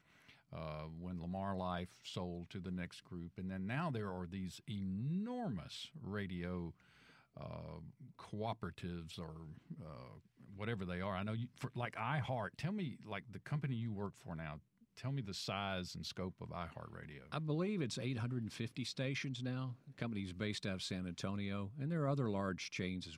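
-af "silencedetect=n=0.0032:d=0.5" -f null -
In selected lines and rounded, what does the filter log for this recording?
silence_start: 6.71
silence_end: 7.37 | silence_duration: 0.66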